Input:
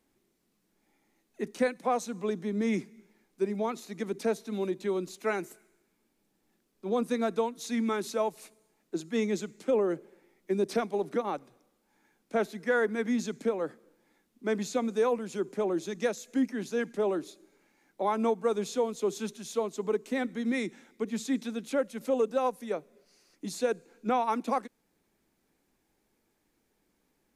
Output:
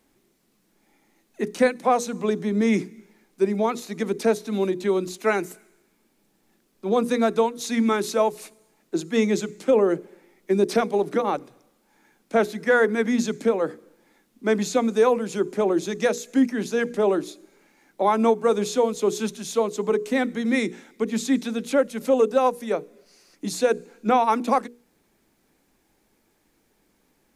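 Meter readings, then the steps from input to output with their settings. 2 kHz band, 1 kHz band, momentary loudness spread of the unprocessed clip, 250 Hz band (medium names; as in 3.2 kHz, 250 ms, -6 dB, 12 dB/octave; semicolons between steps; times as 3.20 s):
+8.5 dB, +8.5 dB, 9 LU, +8.0 dB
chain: hum notches 60/120/180/240/300/360/420/480 Hz; trim +8.5 dB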